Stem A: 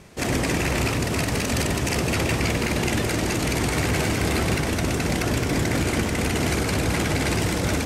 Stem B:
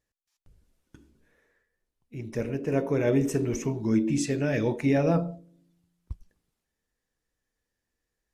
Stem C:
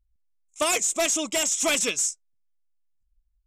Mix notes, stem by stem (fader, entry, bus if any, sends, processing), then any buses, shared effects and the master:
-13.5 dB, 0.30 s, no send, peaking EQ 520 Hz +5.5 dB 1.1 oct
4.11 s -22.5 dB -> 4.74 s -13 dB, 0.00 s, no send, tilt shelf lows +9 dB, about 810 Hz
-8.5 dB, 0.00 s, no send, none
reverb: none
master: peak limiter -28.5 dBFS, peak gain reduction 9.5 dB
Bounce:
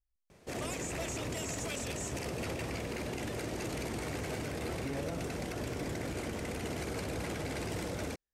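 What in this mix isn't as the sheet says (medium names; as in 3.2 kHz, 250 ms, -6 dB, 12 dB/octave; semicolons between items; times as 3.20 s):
stem B: missing tilt shelf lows +9 dB, about 810 Hz; stem C -8.5 dB -> -14.5 dB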